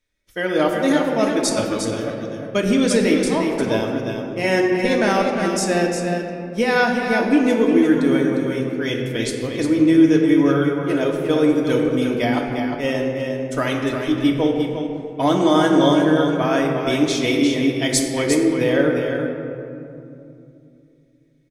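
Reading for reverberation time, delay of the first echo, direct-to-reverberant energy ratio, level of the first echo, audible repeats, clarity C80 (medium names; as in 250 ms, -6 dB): 2.7 s, 354 ms, -1.5 dB, -6.5 dB, 1, 2.0 dB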